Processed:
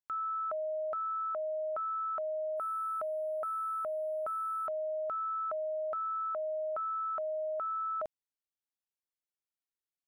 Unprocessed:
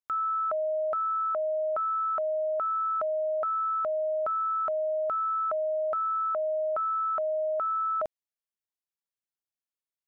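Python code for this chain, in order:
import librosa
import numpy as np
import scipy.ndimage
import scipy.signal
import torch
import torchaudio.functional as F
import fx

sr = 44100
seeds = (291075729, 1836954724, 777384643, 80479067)

y = fx.resample_linear(x, sr, factor=4, at=(2.57, 4.67))
y = y * librosa.db_to_amplitude(-6.5)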